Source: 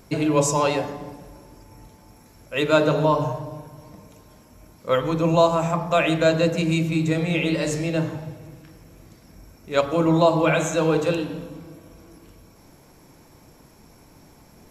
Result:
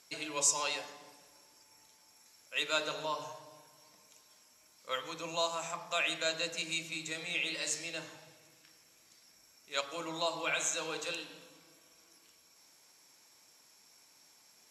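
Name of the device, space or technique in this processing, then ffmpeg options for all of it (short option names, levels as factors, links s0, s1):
piezo pickup straight into a mixer: -af "lowpass=6700,aderivative,volume=1.33"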